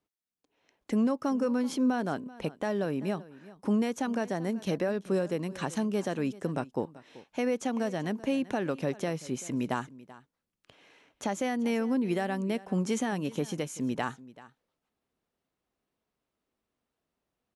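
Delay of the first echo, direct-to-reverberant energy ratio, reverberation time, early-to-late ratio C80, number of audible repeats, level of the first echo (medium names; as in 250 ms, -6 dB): 385 ms, no reverb, no reverb, no reverb, 1, -19.0 dB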